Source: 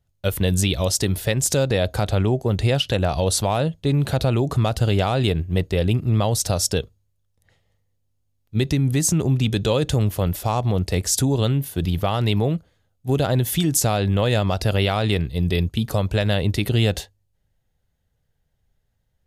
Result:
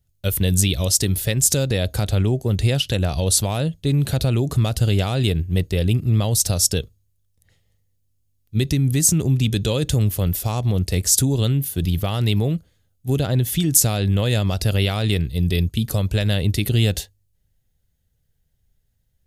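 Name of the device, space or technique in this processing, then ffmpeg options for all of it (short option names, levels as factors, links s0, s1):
smiley-face EQ: -filter_complex "[0:a]lowshelf=f=130:g=3.5,equalizer=f=880:t=o:w=1.7:g=-7,highshelf=f=6800:g=9,asettb=1/sr,asplit=3[s0][s1][s2];[s0]atrim=end=13.194[s3];[s1]atrim=start=13.19:end=13.71,asetpts=PTS-STARTPTS,afade=t=in:d=0.004:c=qsin,afade=t=out:st=0.516:d=0.004:c=qsin,highshelf=f=6400:g=-8.5[s4];[s2]atrim=start=13.706[s5];[s3][s4]acrossfade=d=0.004:c1=hsin:c2=qsin[s6];[s6][s5]acrossfade=d=0.004:c1=qsin:c2=hsin"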